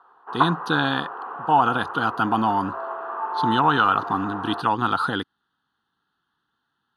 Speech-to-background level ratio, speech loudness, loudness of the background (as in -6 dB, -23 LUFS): 6.5 dB, -23.0 LUFS, -29.5 LUFS